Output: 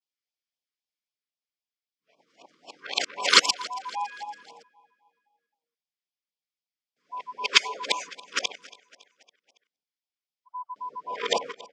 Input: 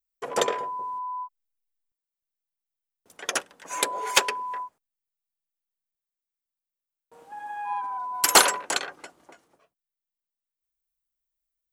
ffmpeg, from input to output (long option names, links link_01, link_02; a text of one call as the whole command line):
ffmpeg -i in.wav -filter_complex "[0:a]areverse,highpass=frequency=170:width=0.5412,highpass=frequency=170:width=1.3066,equalizer=frequency=360:width_type=q:width=4:gain=-5,equalizer=frequency=770:width_type=q:width=4:gain=3,equalizer=frequency=2200:width_type=q:width=4:gain=7,equalizer=frequency=3300:width_type=q:width=4:gain=6,equalizer=frequency=5000:width_type=q:width=4:gain=8,lowpass=frequency=6400:width=0.5412,lowpass=frequency=6400:width=1.3066,asplit=2[link_01][link_02];[link_02]aecho=0:1:279|558|837|1116:0.0891|0.0481|0.026|0.014[link_03];[link_01][link_03]amix=inputs=2:normalize=0,afftfilt=real='re*(1-between(b*sr/1024,680*pow(1700/680,0.5+0.5*sin(2*PI*3.8*pts/sr))/1.41,680*pow(1700/680,0.5+0.5*sin(2*PI*3.8*pts/sr))*1.41))':imag='im*(1-between(b*sr/1024,680*pow(1700/680,0.5+0.5*sin(2*PI*3.8*pts/sr))/1.41,680*pow(1700/680,0.5+0.5*sin(2*PI*3.8*pts/sr))*1.41))':win_size=1024:overlap=0.75,volume=-2dB" out.wav